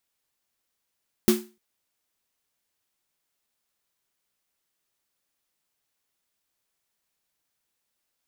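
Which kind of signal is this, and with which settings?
synth snare length 0.30 s, tones 220 Hz, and 360 Hz, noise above 600 Hz, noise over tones −8 dB, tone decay 0.30 s, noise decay 0.30 s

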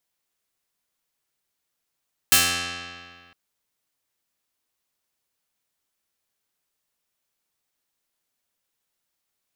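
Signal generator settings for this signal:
Karplus-Strong string F2, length 1.01 s, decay 1.94 s, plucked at 0.18, medium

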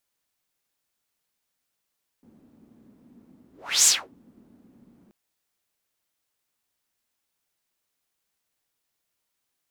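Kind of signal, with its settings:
pass-by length 2.88 s, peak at 0:01.63, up 0.35 s, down 0.27 s, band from 240 Hz, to 7,400 Hz, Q 4.3, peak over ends 40 dB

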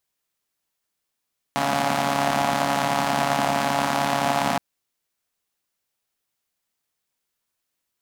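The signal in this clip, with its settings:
pulse-train model of a four-cylinder engine, steady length 3.02 s, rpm 4,200, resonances 230/720 Hz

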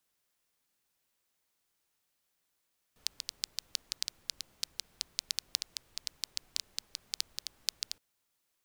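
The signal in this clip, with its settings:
rain-like ticks over hiss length 5.02 s, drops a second 7.1, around 4,600 Hz, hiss −24.5 dB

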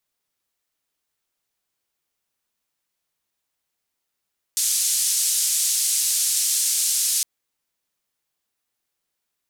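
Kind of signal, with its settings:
band-limited noise 6,500–8,900 Hz, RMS −21.5 dBFS 2.66 s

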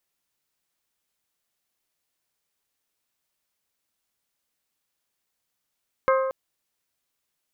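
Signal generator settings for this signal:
struck glass bell, length 0.23 s, lowest mode 529 Hz, decay 1.44 s, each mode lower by 3.5 dB, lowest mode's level −17 dB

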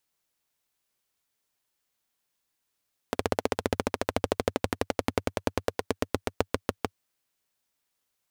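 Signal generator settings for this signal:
pulse-train model of a single-cylinder engine, changing speed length 3.87 s, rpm 1,900, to 700, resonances 96/260/440 Hz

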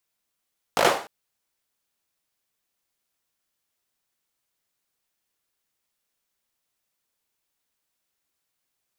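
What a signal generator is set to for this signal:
synth clap length 0.30 s, bursts 5, apart 19 ms, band 650 Hz, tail 0.43 s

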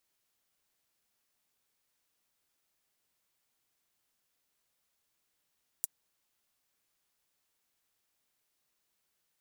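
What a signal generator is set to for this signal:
closed synth hi-hat, high-pass 7,900 Hz, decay 0.03 s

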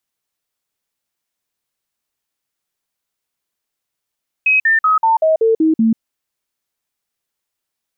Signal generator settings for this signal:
stepped sweep 2,540 Hz down, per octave 2, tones 8, 0.14 s, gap 0.05 s −9.5 dBFS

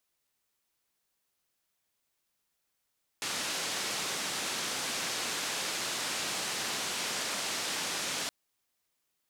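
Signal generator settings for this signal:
band-limited noise 160–6,900 Hz, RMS −34.5 dBFS 5.07 s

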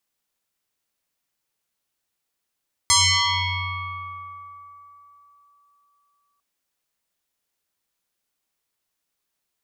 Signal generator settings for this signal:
two-operator FM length 3.50 s, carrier 1,150 Hz, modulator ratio 0.92, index 7.7, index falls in 3.30 s exponential, decay 3.64 s, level −12.5 dB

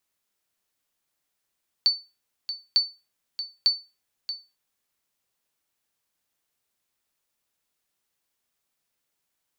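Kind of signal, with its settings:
ping with an echo 4,510 Hz, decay 0.27 s, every 0.90 s, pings 3, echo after 0.63 s, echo −11.5 dB −12 dBFS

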